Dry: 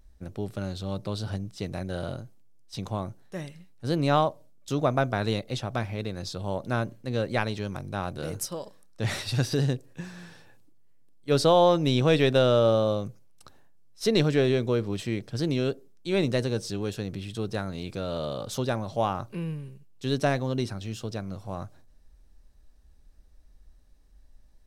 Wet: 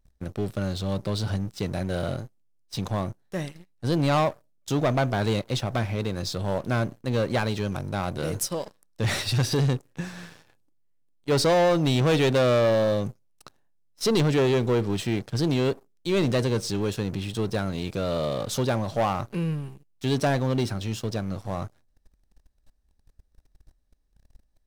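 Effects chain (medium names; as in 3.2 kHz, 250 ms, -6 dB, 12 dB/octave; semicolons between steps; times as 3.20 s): waveshaping leveller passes 3; trim -6 dB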